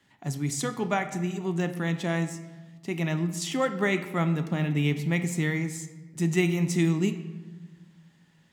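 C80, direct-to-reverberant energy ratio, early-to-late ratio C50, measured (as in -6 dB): 13.0 dB, 8.0 dB, 11.5 dB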